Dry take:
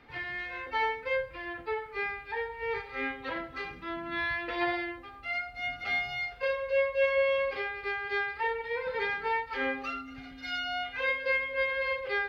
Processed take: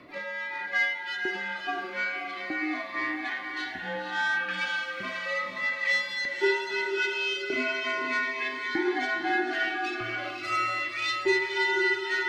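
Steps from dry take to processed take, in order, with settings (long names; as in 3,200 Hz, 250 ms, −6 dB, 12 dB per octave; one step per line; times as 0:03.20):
stylus tracing distortion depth 0.044 ms
reversed playback
upward compression, threshold −32 dBFS
reversed playback
auto-filter high-pass saw up 0.8 Hz 430–4,400 Hz
frequency shifter −150 Hz
on a send: feedback delay with all-pass diffusion 531 ms, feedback 53%, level −4 dB
on the sum: phaser whose notches keep moving one way falling 0.37 Hz
level +2.5 dB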